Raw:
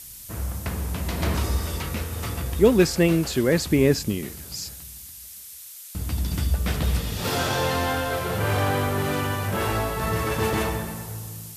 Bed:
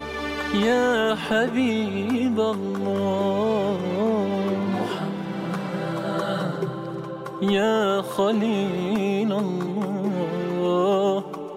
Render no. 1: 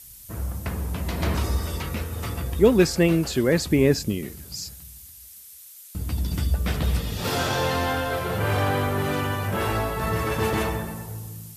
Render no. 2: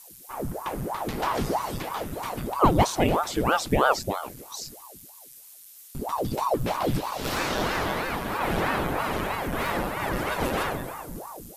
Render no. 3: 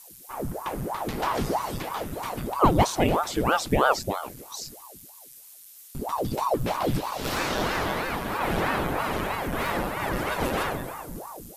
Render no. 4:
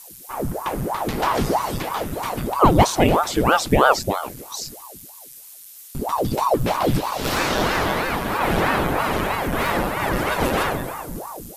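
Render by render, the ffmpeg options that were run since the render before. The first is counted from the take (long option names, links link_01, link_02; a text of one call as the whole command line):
ffmpeg -i in.wav -af "afftdn=noise_reduction=6:noise_floor=-42" out.wav
ffmpeg -i in.wav -af "aeval=exprs='val(0)*sin(2*PI*560*n/s+560*0.9/3.1*sin(2*PI*3.1*n/s))':channel_layout=same" out.wav
ffmpeg -i in.wav -af anull out.wav
ffmpeg -i in.wav -af "volume=6dB,alimiter=limit=-2dB:level=0:latency=1" out.wav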